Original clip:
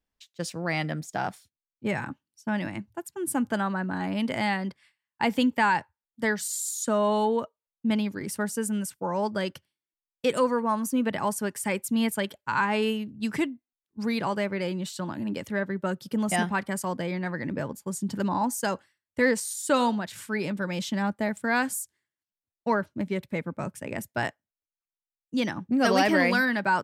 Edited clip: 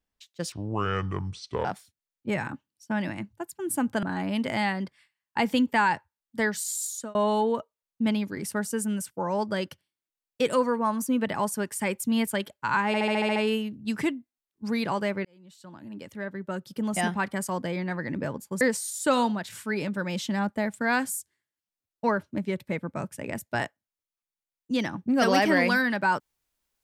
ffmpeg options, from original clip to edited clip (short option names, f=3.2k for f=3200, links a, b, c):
-filter_complex "[0:a]asplit=14[a][b][c][d][e][f][g][h][i][j][k][l][m][n];[a]atrim=end=0.524[o];[b]atrim=start=0.52:end=1.22,asetpts=PTS-STARTPTS,asetrate=27342,aresample=44100,atrim=end_sample=49790,asetpts=PTS-STARTPTS[p];[c]atrim=start=1.216:end=3.602[q];[d]atrim=start=3.868:end=6.99,asetpts=PTS-STARTPTS,afade=t=out:st=2.832:d=0.29[r];[e]atrim=start=6.99:end=12.782,asetpts=PTS-STARTPTS,afade=t=in:d=0.004:c=hsin[s];[f]atrim=start=12.708:end=12.782[t];[g]atrim=start=12.708:end=12.782[u];[h]atrim=start=12.708:end=12.782[v];[i]atrim=start=12.708:end=12.782[w];[j]atrim=start=12.708:end=12.782[x];[k]atrim=start=12.708:end=12.782[y];[l]atrim=start=12.708:end=14.6,asetpts=PTS-STARTPTS,afade=t=out:st=1.888:d=0.004:c=hsin[z];[m]atrim=start=14.6:end=17.962,asetpts=PTS-STARTPTS,afade=t=in:d=2.05[aa];[n]atrim=start=19.238[ab];[o][p]acrossfade=d=0.004:c1=hsin:c2=hsin[ac];[ac][q]acrossfade=d=0.004:c1=hsin:c2=hsin[ad];[r][s]concat=n=2:v=0:a=1[ae];[ad][ae]acrossfade=d=0.004:c1=hsin:c2=hsin[af];[af][t]acrossfade=d=0.004:c1=hsin:c2=hsin[ag];[ag][u]acrossfade=d=0.004:c1=hsin:c2=hsin[ah];[ah][v]acrossfade=d=0.004:c1=hsin:c2=hsin[ai];[ai][w]acrossfade=d=0.004:c1=hsin:c2=hsin[aj];[aj][x]acrossfade=d=0.004:c1=hsin:c2=hsin[ak];[ak][y]acrossfade=d=0.004:c1=hsin:c2=hsin[al];[z][aa]concat=n=2:v=0:a=1[am];[al][am]acrossfade=d=0.004:c1=hsin:c2=hsin[an];[an][ab]acrossfade=d=0.004:c1=hsin:c2=hsin"